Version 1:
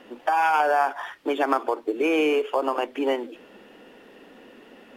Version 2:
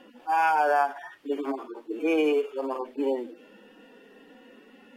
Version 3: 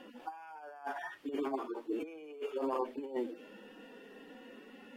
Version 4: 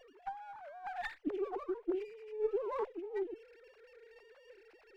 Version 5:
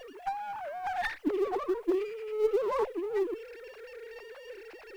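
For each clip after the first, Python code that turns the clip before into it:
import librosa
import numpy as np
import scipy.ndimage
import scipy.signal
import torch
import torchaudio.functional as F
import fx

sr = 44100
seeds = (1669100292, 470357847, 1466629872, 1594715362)

y1 = fx.hpss_only(x, sr, part='harmonic')
y1 = F.gain(torch.from_numpy(y1), -1.5).numpy()
y2 = fx.over_compress(y1, sr, threshold_db=-31.0, ratio=-0.5)
y2 = F.gain(torch.from_numpy(y2), -6.5).numpy()
y3 = fx.sine_speech(y2, sr)
y3 = fx.running_max(y3, sr, window=5)
y4 = fx.law_mismatch(y3, sr, coded='mu')
y4 = F.gain(torch.from_numpy(y4), 5.5).numpy()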